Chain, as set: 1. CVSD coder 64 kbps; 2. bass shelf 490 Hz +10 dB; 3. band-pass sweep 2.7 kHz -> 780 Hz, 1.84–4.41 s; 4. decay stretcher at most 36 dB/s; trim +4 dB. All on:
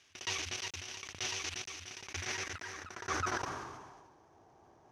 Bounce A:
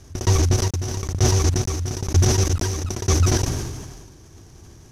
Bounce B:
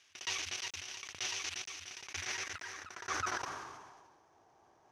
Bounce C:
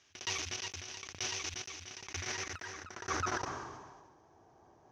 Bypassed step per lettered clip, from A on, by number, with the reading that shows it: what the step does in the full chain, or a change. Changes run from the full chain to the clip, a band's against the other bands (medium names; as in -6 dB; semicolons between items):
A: 3, 125 Hz band +18.5 dB; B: 2, 125 Hz band -7.5 dB; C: 1, 2 kHz band -1.5 dB